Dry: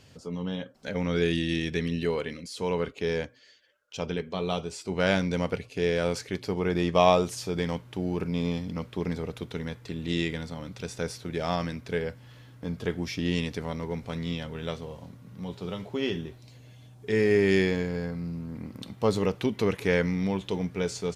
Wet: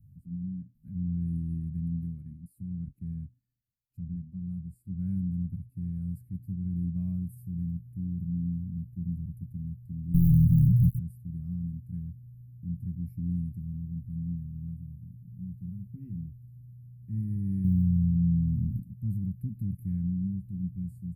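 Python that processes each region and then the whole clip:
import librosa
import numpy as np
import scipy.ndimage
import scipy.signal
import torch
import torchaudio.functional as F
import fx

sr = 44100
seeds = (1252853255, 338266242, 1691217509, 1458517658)

y = fx.chain(x, sr, fx.dead_time(dead_ms=0.26),
    fx.peak_eq(hz=130.0, db=11.0, octaves=0.45),
    fx.leveller(passes=5), at=(10.14, 10.99))
y = fx.chain(y, sr, fx.low_shelf(hz=350.0, db=6.5),
    fx.power_curve(exponent=0.7), at=(17.64, 18.8))
y = scipy.signal.sosfilt(scipy.signal.cheby2(4, 50, [420.0, 6500.0], 'bandstop', fs=sr, output='sos'), y)
y = fx.high_shelf(y, sr, hz=8900.0, db=-8.0)
y = y * librosa.db_to_amplitude(3.0)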